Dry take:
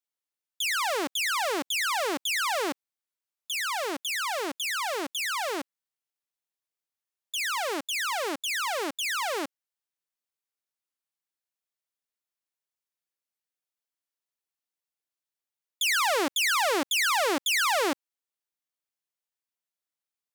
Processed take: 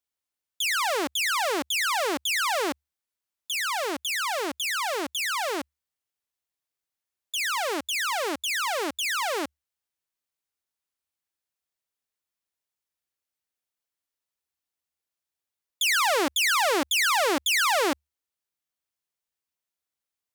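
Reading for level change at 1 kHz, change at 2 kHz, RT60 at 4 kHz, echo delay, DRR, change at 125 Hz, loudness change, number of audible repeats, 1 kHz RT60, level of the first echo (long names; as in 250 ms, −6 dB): +2.0 dB, +2.0 dB, no reverb audible, no echo audible, no reverb audible, can't be measured, +2.0 dB, no echo audible, no reverb audible, no echo audible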